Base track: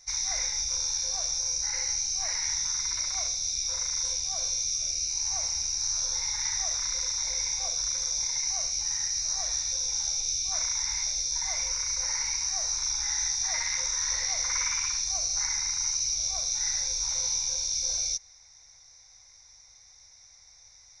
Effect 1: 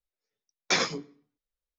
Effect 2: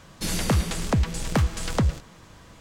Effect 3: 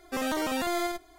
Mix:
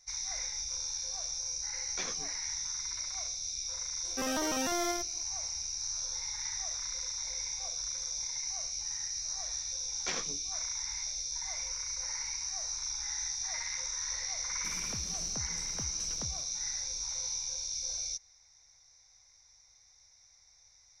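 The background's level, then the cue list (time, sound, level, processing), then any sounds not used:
base track -7.5 dB
1.27 add 1 -15.5 dB
4.05 add 3 -4 dB
9.36 add 1 -12.5 dB + Doppler distortion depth 0.13 ms
14.43 add 2 -16 dB + limiter -21.5 dBFS

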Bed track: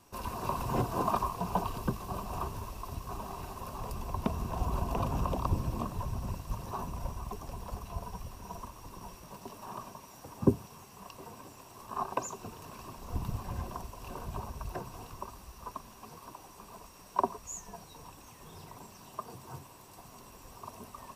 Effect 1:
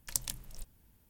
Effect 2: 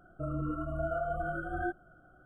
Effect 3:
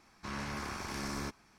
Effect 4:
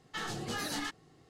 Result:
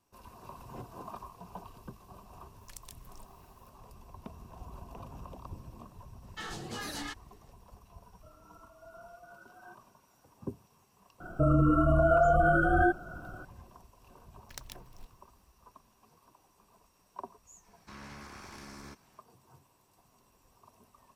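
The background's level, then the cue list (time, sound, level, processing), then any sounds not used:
bed track -14.5 dB
2.61 add 1 -0.5 dB + compressor 3:1, threshold -48 dBFS
6.23 add 4 -3 dB
8.03 add 2 -15.5 dB + HPF 650 Hz
11.2 add 2 -15 dB + maximiser +29 dB
14.42 add 1 -6 dB + median filter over 5 samples
17.64 add 3 -5.5 dB + limiter -33 dBFS

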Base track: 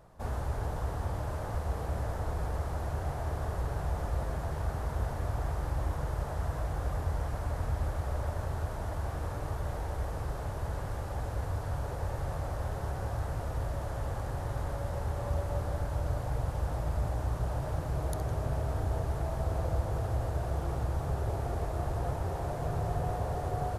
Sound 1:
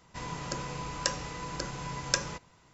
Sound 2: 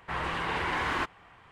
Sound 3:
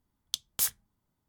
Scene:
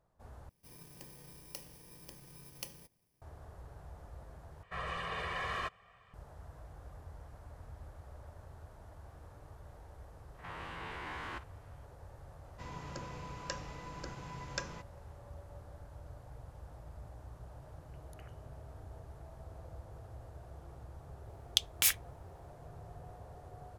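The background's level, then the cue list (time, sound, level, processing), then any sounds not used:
base track -18 dB
0.49 replace with 1 -16.5 dB + FFT order left unsorted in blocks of 32 samples
4.63 replace with 2 -10 dB + comb 1.7 ms, depth 91%
10.34 add 2 -12 dB + stepped spectrum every 50 ms
12.44 add 1 -8 dB + LPF 3400 Hz 6 dB/oct
17.6 add 3 -17 dB + inverted band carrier 3000 Hz
21.23 add 3 -1.5 dB + bell 2400 Hz +15 dB 0.96 oct

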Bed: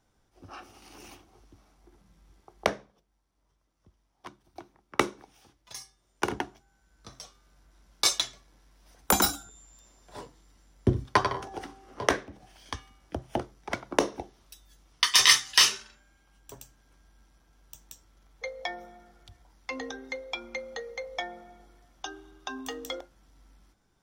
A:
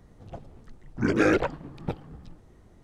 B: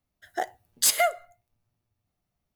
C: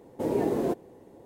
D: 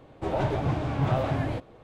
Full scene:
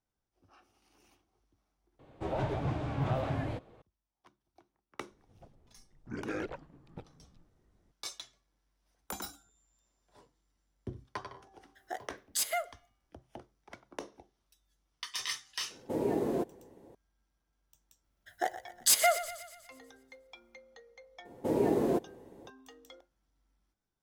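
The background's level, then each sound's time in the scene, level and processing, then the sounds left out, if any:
bed -18 dB
1.99 replace with D -6.5 dB
5.09 add A -16 dB
11.53 add B -10.5 dB
15.7 add C -4.5 dB
18.04 add B -3 dB + thinning echo 0.121 s, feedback 56%, level -12.5 dB
21.25 add C -1.5 dB

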